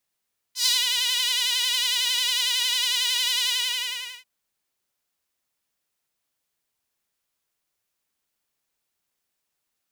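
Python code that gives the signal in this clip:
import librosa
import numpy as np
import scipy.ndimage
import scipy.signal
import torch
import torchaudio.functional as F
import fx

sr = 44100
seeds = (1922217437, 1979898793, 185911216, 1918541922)

y = fx.sub_patch_vibrato(sr, seeds[0], note=83, wave='saw', wave2='saw', interval_st=0, detune_cents=16, level2_db=-9.0, sub_db=-5.0, noise_db=-26.5, kind='highpass', cutoff_hz=2500.0, q=2.5, env_oct=1.0, env_decay_s=0.27, env_sustain_pct=40, attack_ms=102.0, decay_s=0.19, sustain_db=-5.0, release_s=0.77, note_s=2.92, lfo_hz=11.0, vibrato_cents=66)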